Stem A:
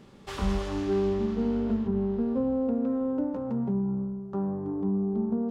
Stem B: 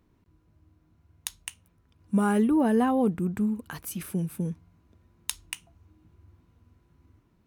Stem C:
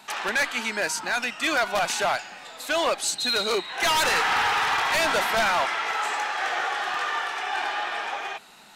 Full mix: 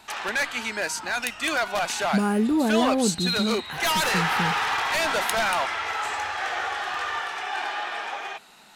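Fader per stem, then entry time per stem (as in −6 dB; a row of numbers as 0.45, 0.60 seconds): muted, +0.5 dB, −1.5 dB; muted, 0.00 s, 0.00 s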